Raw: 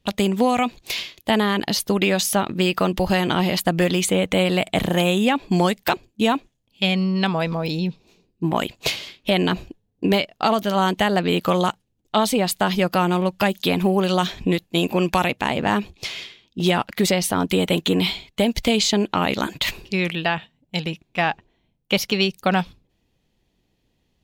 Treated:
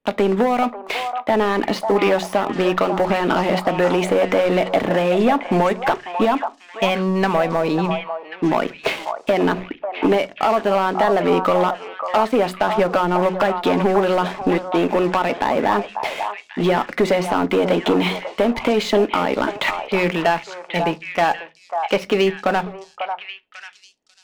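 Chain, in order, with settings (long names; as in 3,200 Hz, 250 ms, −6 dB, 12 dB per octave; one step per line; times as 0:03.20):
low-pass filter 9,800 Hz
three-way crossover with the lows and the highs turned down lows −18 dB, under 250 Hz, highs −22 dB, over 2,100 Hz
hum removal 185.1 Hz, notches 2
downward compressor, threshold −22 dBFS, peak gain reduction 8 dB
leveller curve on the samples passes 3
echo through a band-pass that steps 544 ms, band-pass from 890 Hz, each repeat 1.4 octaves, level −4 dB
on a send at −12 dB: convolution reverb RT60 0.25 s, pre-delay 3 ms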